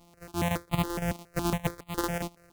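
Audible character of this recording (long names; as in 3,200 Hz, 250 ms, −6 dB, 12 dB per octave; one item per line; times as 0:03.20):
a buzz of ramps at a fixed pitch in blocks of 256 samples
chopped level 5.9 Hz, depth 60%, duty 85%
notches that jump at a steady rate 7.2 Hz 440–1,600 Hz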